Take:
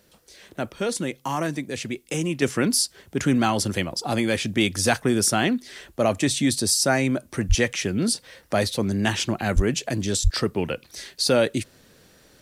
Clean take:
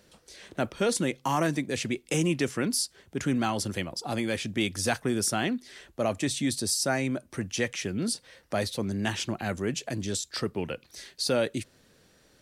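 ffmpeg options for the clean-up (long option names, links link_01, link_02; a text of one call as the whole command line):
ffmpeg -i in.wav -filter_complex "[0:a]asplit=3[link_01][link_02][link_03];[link_01]afade=type=out:start_time=7.48:duration=0.02[link_04];[link_02]highpass=frequency=140:width=0.5412,highpass=frequency=140:width=1.3066,afade=type=in:start_time=7.48:duration=0.02,afade=type=out:start_time=7.6:duration=0.02[link_05];[link_03]afade=type=in:start_time=7.6:duration=0.02[link_06];[link_04][link_05][link_06]amix=inputs=3:normalize=0,asplit=3[link_07][link_08][link_09];[link_07]afade=type=out:start_time=9.55:duration=0.02[link_10];[link_08]highpass=frequency=140:width=0.5412,highpass=frequency=140:width=1.3066,afade=type=in:start_time=9.55:duration=0.02,afade=type=out:start_time=9.67:duration=0.02[link_11];[link_09]afade=type=in:start_time=9.67:duration=0.02[link_12];[link_10][link_11][link_12]amix=inputs=3:normalize=0,asplit=3[link_13][link_14][link_15];[link_13]afade=type=out:start_time=10.23:duration=0.02[link_16];[link_14]highpass=frequency=140:width=0.5412,highpass=frequency=140:width=1.3066,afade=type=in:start_time=10.23:duration=0.02,afade=type=out:start_time=10.35:duration=0.02[link_17];[link_15]afade=type=in:start_time=10.35:duration=0.02[link_18];[link_16][link_17][link_18]amix=inputs=3:normalize=0,agate=range=-21dB:threshold=-47dB,asetnsamples=nb_out_samples=441:pad=0,asendcmd='2.42 volume volume -6.5dB',volume=0dB" out.wav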